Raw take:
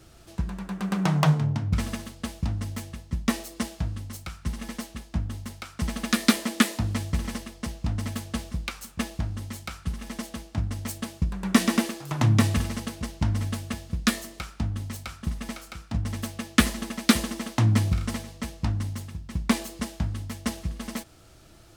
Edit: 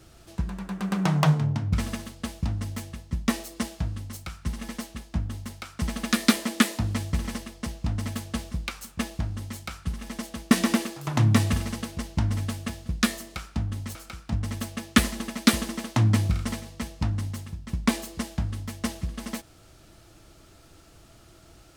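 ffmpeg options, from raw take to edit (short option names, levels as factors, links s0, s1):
-filter_complex "[0:a]asplit=3[s0][s1][s2];[s0]atrim=end=10.512[s3];[s1]atrim=start=11.548:end=14.992[s4];[s2]atrim=start=15.568[s5];[s3][s4]acrossfade=d=0.004:c1=hsin:c2=hsin[s6];[s6][s5]acrossfade=d=0.004:c1=hsin:c2=hsin"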